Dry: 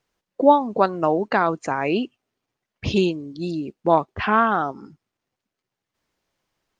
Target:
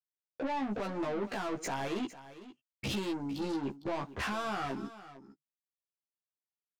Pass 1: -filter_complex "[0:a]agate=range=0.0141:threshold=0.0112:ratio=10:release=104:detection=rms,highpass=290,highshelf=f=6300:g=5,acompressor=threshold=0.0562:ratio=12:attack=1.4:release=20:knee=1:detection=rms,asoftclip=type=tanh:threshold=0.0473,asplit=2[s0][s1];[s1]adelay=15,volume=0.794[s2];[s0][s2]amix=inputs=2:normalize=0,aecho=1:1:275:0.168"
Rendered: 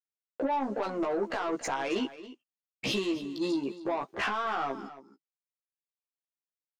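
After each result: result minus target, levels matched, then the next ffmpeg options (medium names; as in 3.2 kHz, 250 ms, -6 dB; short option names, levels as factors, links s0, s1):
125 Hz band -8.0 dB; echo 180 ms early; saturation: distortion -6 dB
-filter_complex "[0:a]agate=range=0.0141:threshold=0.0112:ratio=10:release=104:detection=rms,highpass=78,highshelf=f=6300:g=5,acompressor=threshold=0.0562:ratio=12:attack=1.4:release=20:knee=1:detection=rms,asoftclip=type=tanh:threshold=0.0473,asplit=2[s0][s1];[s1]adelay=15,volume=0.794[s2];[s0][s2]amix=inputs=2:normalize=0,aecho=1:1:275:0.168"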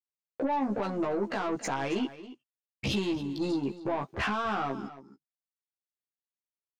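echo 180 ms early; saturation: distortion -7 dB
-filter_complex "[0:a]agate=range=0.0141:threshold=0.0112:ratio=10:release=104:detection=rms,highpass=78,highshelf=f=6300:g=5,acompressor=threshold=0.0562:ratio=12:attack=1.4:release=20:knee=1:detection=rms,asoftclip=type=tanh:threshold=0.0473,asplit=2[s0][s1];[s1]adelay=15,volume=0.794[s2];[s0][s2]amix=inputs=2:normalize=0,aecho=1:1:455:0.168"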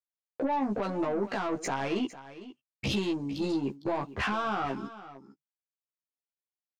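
saturation: distortion -7 dB
-filter_complex "[0:a]agate=range=0.0141:threshold=0.0112:ratio=10:release=104:detection=rms,highpass=78,highshelf=f=6300:g=5,acompressor=threshold=0.0562:ratio=12:attack=1.4:release=20:knee=1:detection=rms,asoftclip=type=tanh:threshold=0.0188,asplit=2[s0][s1];[s1]adelay=15,volume=0.794[s2];[s0][s2]amix=inputs=2:normalize=0,aecho=1:1:455:0.168"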